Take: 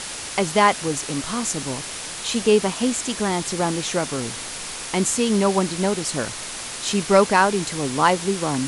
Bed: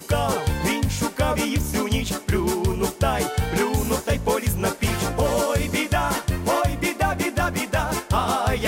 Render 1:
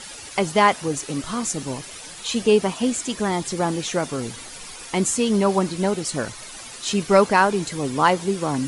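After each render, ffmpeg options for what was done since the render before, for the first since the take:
-af "afftdn=nr=11:nf=-33"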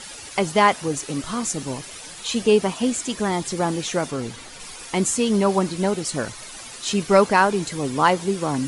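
-filter_complex "[0:a]asettb=1/sr,asplit=3[a][b][c];[a]atrim=end=4.114[d];[b]atrim=start=4.11:end=4.6,asetpts=PTS-STARTPTS,afade=t=in:d=0.004:c=qsin,afade=t=out:st=0.486:d=0.004:c=qsin,highshelf=f=8.2k:g=-9.5[e];[c]atrim=start=4.596[f];[d][e]acrossfade=d=0.004:c1=hsin:c2=qsin[g];[g][f]acrossfade=d=0.004:c1=qsin:c2=hsin"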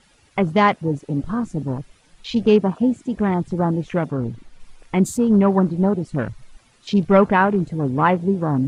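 -af "afwtdn=0.0282,bass=f=250:g=9,treble=f=4k:g=-8"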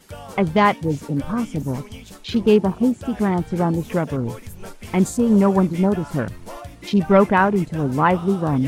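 -filter_complex "[1:a]volume=-15dB[a];[0:a][a]amix=inputs=2:normalize=0"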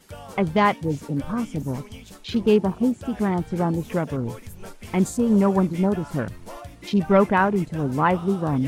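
-af "volume=-3dB"

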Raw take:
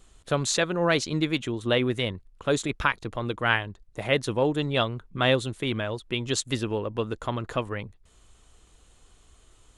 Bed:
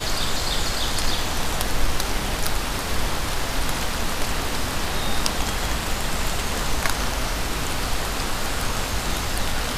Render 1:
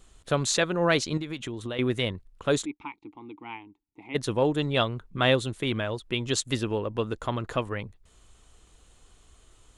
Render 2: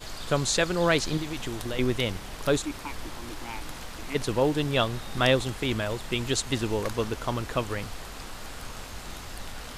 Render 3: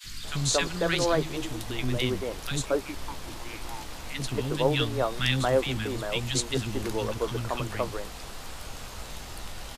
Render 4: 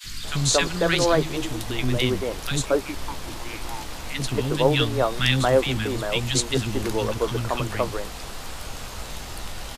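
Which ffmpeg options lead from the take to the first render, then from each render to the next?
-filter_complex "[0:a]asettb=1/sr,asplit=3[a][b][c];[a]atrim=end=1.174[d];[b]atrim=start=1.17:end=1.79,asetpts=PTS-STARTPTS,afade=t=in:d=0.004:c=qsin,afade=t=out:st=0.616:d=0.004:c=qsin,acompressor=threshold=-30dB:ratio=6:attack=3.2:release=140:knee=1:detection=peak[e];[c]atrim=start=1.786[f];[d][e]acrossfade=d=0.004:c1=hsin:c2=qsin[g];[g][f]acrossfade=d=0.004:c1=qsin:c2=hsin,asplit=3[h][i][j];[h]afade=t=out:st=2.64:d=0.02[k];[i]asplit=3[l][m][n];[l]bandpass=f=300:t=q:w=8,volume=0dB[o];[m]bandpass=f=870:t=q:w=8,volume=-6dB[p];[n]bandpass=f=2.24k:t=q:w=8,volume=-9dB[q];[o][p][q]amix=inputs=3:normalize=0,afade=t=in:st=2.64:d=0.02,afade=t=out:st=4.14:d=0.02[r];[j]afade=t=in:st=4.14:d=0.02[s];[k][r][s]amix=inputs=3:normalize=0"
-filter_complex "[1:a]volume=-14.5dB[a];[0:a][a]amix=inputs=2:normalize=0"
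-filter_complex "[0:a]asplit=2[a][b];[b]adelay=15,volume=-12dB[c];[a][c]amix=inputs=2:normalize=0,acrossover=split=270|1500[d][e][f];[d]adelay=40[g];[e]adelay=230[h];[g][h][f]amix=inputs=3:normalize=0"
-af "volume=5dB"

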